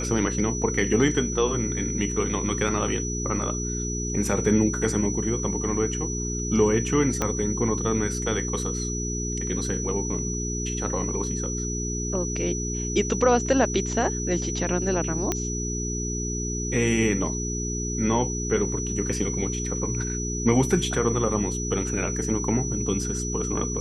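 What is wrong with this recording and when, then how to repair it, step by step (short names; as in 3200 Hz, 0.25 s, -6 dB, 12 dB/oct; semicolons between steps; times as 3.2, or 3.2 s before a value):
hum 60 Hz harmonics 7 -30 dBFS
tone 5900 Hz -31 dBFS
7.22 pop -10 dBFS
15.32 pop -9 dBFS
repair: de-click; notch 5900 Hz, Q 30; de-hum 60 Hz, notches 7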